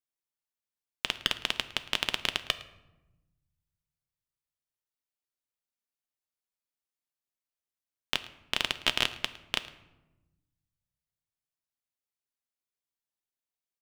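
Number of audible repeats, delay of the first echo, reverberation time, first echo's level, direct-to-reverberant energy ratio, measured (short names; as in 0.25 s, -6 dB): 1, 0.109 s, 1.0 s, -20.0 dB, 9.5 dB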